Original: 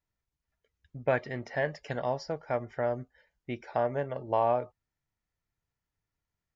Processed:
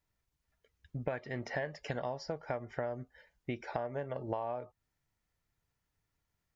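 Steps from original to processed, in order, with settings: compression 12:1, threshold -37 dBFS, peak gain reduction 16 dB; trim +4 dB

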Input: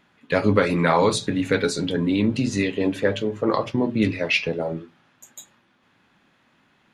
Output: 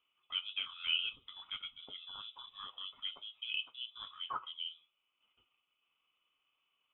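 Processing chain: vowel filter a; frequency inversion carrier 3.7 kHz; transient shaper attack -1 dB, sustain -5 dB; trim -6 dB

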